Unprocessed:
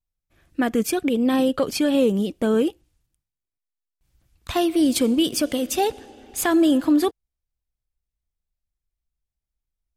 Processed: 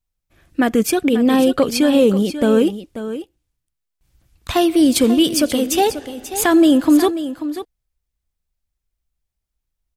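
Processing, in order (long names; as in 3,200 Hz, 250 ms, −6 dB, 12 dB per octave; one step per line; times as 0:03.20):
single-tap delay 538 ms −12 dB
level +5.5 dB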